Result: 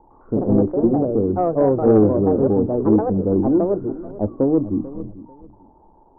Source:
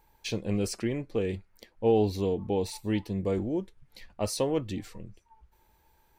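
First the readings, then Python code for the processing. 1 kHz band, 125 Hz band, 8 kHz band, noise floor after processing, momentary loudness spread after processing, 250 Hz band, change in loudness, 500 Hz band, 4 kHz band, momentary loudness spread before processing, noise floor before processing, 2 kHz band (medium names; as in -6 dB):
+12.0 dB, +10.0 dB, under -40 dB, -52 dBFS, 12 LU, +14.0 dB, +12.0 dB, +11.5 dB, under -40 dB, 14 LU, -67 dBFS, no reading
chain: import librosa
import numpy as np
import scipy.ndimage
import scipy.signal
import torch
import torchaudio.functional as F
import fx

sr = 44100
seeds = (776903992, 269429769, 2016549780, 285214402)

p1 = x + 0.5 * 10.0 ** (-26.5 / 20.0) * np.diff(np.sign(x), prepend=np.sign(x[:1]))
p2 = scipy.signal.sosfilt(scipy.signal.butter(8, 930.0, 'lowpass', fs=sr, output='sos'), p1)
p3 = fx.peak_eq(p2, sr, hz=280.0, db=13.5, octaves=1.1)
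p4 = fx.hum_notches(p3, sr, base_hz=60, count=5)
p5 = fx.echo_pitch(p4, sr, ms=105, semitones=4, count=2, db_per_echo=-3.0)
p6 = 10.0 ** (-6.5 / 20.0) * np.tanh(p5 / 10.0 ** (-6.5 / 20.0))
p7 = fx.low_shelf(p6, sr, hz=120.0, db=7.0)
p8 = p7 + fx.echo_feedback(p7, sr, ms=442, feedback_pct=23, wet_db=-17, dry=0)
y = p8 * librosa.db_to_amplitude(2.5)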